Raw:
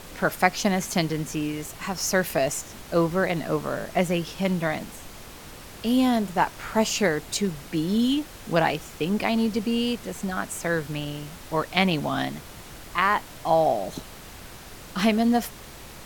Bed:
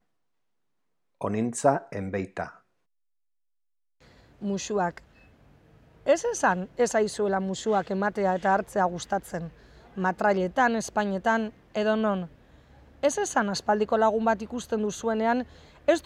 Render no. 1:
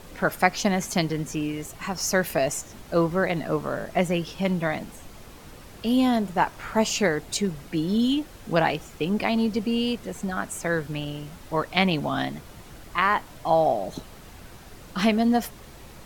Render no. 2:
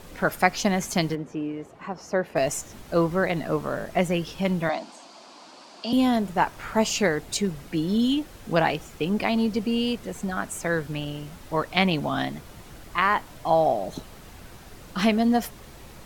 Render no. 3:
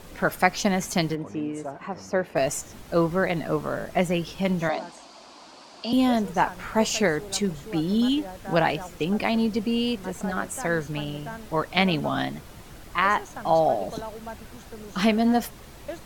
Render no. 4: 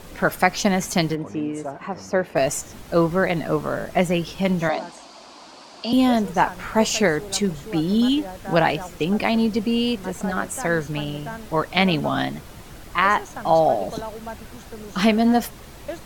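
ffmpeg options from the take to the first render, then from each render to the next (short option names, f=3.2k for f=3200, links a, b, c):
-af "afftdn=nr=6:nf=-43"
-filter_complex "[0:a]asplit=3[a][b][c];[a]afade=t=out:st=1.14:d=0.02[d];[b]bandpass=f=490:t=q:w=0.62,afade=t=in:st=1.14:d=0.02,afade=t=out:st=2.35:d=0.02[e];[c]afade=t=in:st=2.35:d=0.02[f];[d][e][f]amix=inputs=3:normalize=0,asettb=1/sr,asplit=3[g][h][i];[g]atrim=end=4.694[j];[h]atrim=start=4.69:end=5.93,asetpts=PTS-STARTPTS,afade=t=in:d=0.004:c=qsin,afade=t=out:st=1.236:d=0.004:c=qsin,highpass=f=260:w=0.5412,highpass=f=260:w=1.3066,equalizer=f=450:t=q:w=4:g=-10,equalizer=f=670:t=q:w=4:g=6,equalizer=f=970:t=q:w=4:g=6,equalizer=f=1.9k:t=q:w=4:g=-6,equalizer=f=4.6k:t=q:w=4:g=9,lowpass=f=7.8k:w=0.5412,lowpass=f=7.8k:w=1.3066[k];[i]atrim=start=5.926[l];[j][k]acrossfade=d=0.004:c1=hsin:c2=qsin[m];[m][l]acrossfade=d=0.004:c1=qsin:c2=hsin"
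-filter_complex "[1:a]volume=-14.5dB[a];[0:a][a]amix=inputs=2:normalize=0"
-af "volume=3.5dB,alimiter=limit=-3dB:level=0:latency=1"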